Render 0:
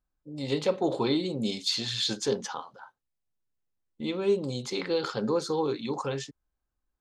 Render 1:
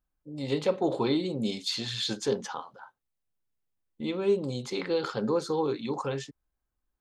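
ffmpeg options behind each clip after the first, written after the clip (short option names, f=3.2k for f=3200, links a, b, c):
-af "equalizer=f=5.5k:w=0.84:g=-4"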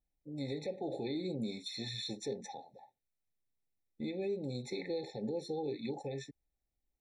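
-af "alimiter=level_in=1.5dB:limit=-24dB:level=0:latency=1:release=198,volume=-1.5dB,afftfilt=real='re*eq(mod(floor(b*sr/1024/870),2),0)':imag='im*eq(mod(floor(b*sr/1024/870),2),0)':win_size=1024:overlap=0.75,volume=-3.5dB"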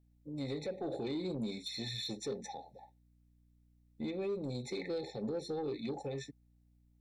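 -af "aeval=exprs='val(0)+0.000398*(sin(2*PI*60*n/s)+sin(2*PI*2*60*n/s)/2+sin(2*PI*3*60*n/s)/3+sin(2*PI*4*60*n/s)/4+sin(2*PI*5*60*n/s)/5)':c=same,asoftclip=type=tanh:threshold=-31dB,volume=1.5dB"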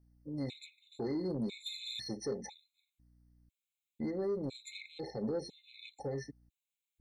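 -af "afftfilt=real='re*gt(sin(2*PI*1*pts/sr)*(1-2*mod(floor(b*sr/1024/2100),2)),0)':imag='im*gt(sin(2*PI*1*pts/sr)*(1-2*mod(floor(b*sr/1024/2100),2)),0)':win_size=1024:overlap=0.75,volume=2dB"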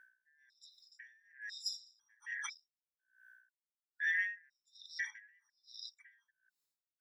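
-af "afftfilt=real='real(if(lt(b,272),68*(eq(floor(b/68),0)*3+eq(floor(b/68),1)*0+eq(floor(b/68),2)*1+eq(floor(b/68),3)*2)+mod(b,68),b),0)':imag='imag(if(lt(b,272),68*(eq(floor(b/68),0)*3+eq(floor(b/68),1)*0+eq(floor(b/68),2)*1+eq(floor(b/68),3)*2)+mod(b,68),b),0)':win_size=2048:overlap=0.75,aeval=exprs='val(0)*pow(10,-40*(0.5-0.5*cos(2*PI*1.2*n/s))/20)':c=same,volume=5dB"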